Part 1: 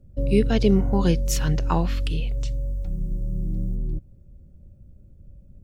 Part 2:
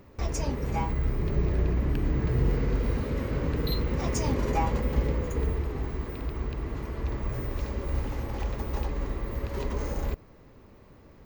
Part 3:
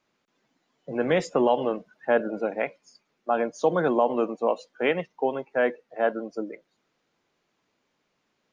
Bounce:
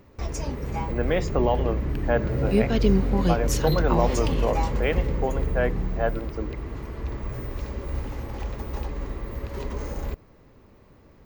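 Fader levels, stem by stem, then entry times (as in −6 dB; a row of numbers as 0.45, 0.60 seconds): −2.5, −0.5, −2.0 decibels; 2.20, 0.00, 0.00 seconds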